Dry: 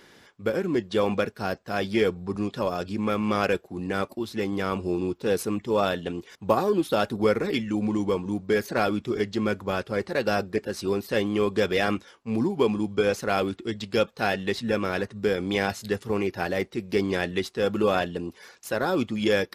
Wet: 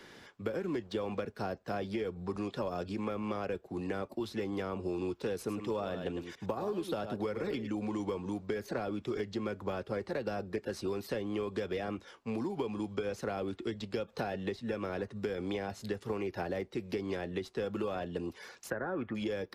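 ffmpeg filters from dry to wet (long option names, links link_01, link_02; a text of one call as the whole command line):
ffmpeg -i in.wav -filter_complex "[0:a]asettb=1/sr,asplit=3[link_01][link_02][link_03];[link_01]atrim=end=0.574[link_04];[link_02]atrim=start=0.57:end=1.26,asetpts=PTS-STARTPTS,afade=type=in:duration=0.004:curve=qsin,afade=type=out:start_time=0.686:duration=0.004:curve=qsin,aeval=exprs='sgn(val(0))*max(abs(val(0))-0.00188,0)':channel_layout=same[link_05];[link_03]atrim=start=1.256[link_06];[link_04][link_05]acrossfade=duration=0.004:curve1=hsin:curve2=qsin[link_07];[link_07][link_06]acrossfade=duration=0.004:curve1=qsin:curve2=hsin,asplit=3[link_08][link_09][link_10];[link_08]afade=type=out:start_time=5.47:duration=0.02[link_11];[link_09]aecho=1:1:105:0.266,afade=type=in:start_time=5.47:duration=0.02,afade=type=out:start_time=7.66:duration=0.02[link_12];[link_10]afade=type=in:start_time=7.66:duration=0.02[link_13];[link_11][link_12][link_13]amix=inputs=3:normalize=0,asplit=3[link_14][link_15][link_16];[link_14]afade=type=out:start_time=14.08:duration=0.02[link_17];[link_15]acontrast=78,afade=type=in:start_time=14.08:duration=0.02,afade=type=out:start_time=14.55:duration=0.02[link_18];[link_16]afade=type=in:start_time=14.55:duration=0.02[link_19];[link_17][link_18][link_19]amix=inputs=3:normalize=0,asettb=1/sr,asplit=3[link_20][link_21][link_22];[link_20]atrim=end=18.704[link_23];[link_21]atrim=start=18.7:end=19.15,asetpts=PTS-STARTPTS,afade=type=in:duration=0.004:curve=qsin,afade=type=out:start_time=0.446:duration=0.004:curve=qsin,lowpass=frequency=1700:width_type=q:width=5.9[link_24];[link_22]atrim=start=19.146[link_25];[link_23][link_24]acrossfade=duration=0.004:curve1=hsin:curve2=qsin[link_26];[link_26][link_25]acrossfade=duration=0.004:curve1=qsin:curve2=hsin,acompressor=threshold=-25dB:ratio=6,highshelf=frequency=7900:gain=-6.5,acrossover=split=110|310|890[link_27][link_28][link_29][link_30];[link_27]acompressor=threshold=-49dB:ratio=4[link_31];[link_28]acompressor=threshold=-44dB:ratio=4[link_32];[link_29]acompressor=threshold=-35dB:ratio=4[link_33];[link_30]acompressor=threshold=-46dB:ratio=4[link_34];[link_31][link_32][link_33][link_34]amix=inputs=4:normalize=0" out.wav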